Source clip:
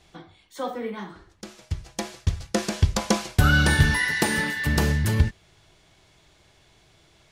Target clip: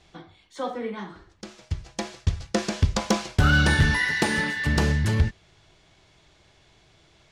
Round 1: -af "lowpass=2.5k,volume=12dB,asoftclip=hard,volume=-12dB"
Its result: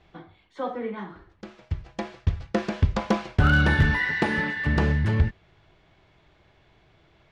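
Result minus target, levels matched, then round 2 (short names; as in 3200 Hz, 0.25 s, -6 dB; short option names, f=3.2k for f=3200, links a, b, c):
8000 Hz band -15.0 dB
-af "lowpass=7.4k,volume=12dB,asoftclip=hard,volume=-12dB"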